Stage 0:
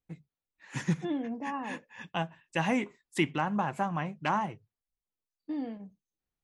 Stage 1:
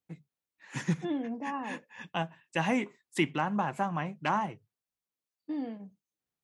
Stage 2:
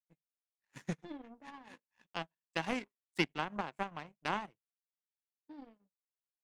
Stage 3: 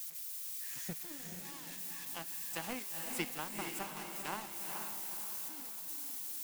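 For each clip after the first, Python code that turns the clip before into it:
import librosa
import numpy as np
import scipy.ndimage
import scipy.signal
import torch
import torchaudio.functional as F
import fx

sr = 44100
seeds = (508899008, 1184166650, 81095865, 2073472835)

y1 = scipy.signal.sosfilt(scipy.signal.butter(2, 110.0, 'highpass', fs=sr, output='sos'), x)
y2 = fx.low_shelf(y1, sr, hz=68.0, db=-8.5)
y2 = fx.power_curve(y2, sr, exponent=2.0)
y2 = F.gain(torch.from_numpy(y2), 1.0).numpy()
y3 = y2 + 0.5 * 10.0 ** (-28.0 / 20.0) * np.diff(np.sign(y2), prepend=np.sign(y2[:1]))
y3 = fx.echo_diffused(y3, sr, ms=460, feedback_pct=49, wet_db=-4)
y3 = F.gain(torch.from_numpy(y3), -6.5).numpy()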